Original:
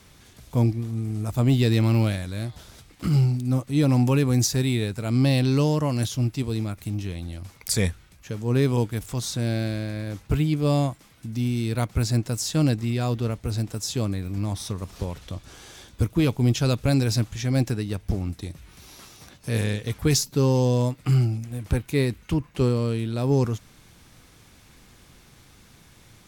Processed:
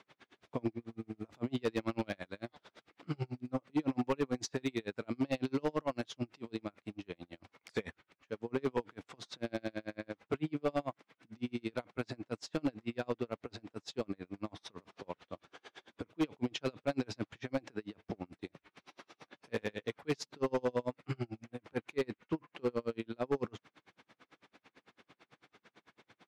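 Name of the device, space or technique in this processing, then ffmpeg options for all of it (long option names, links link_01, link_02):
helicopter radio: -af "highpass=320,lowpass=2700,aeval=exprs='val(0)*pow(10,-38*(0.5-0.5*cos(2*PI*9*n/s))/20)':channel_layout=same,asoftclip=type=hard:threshold=-26.5dB,volume=1dB"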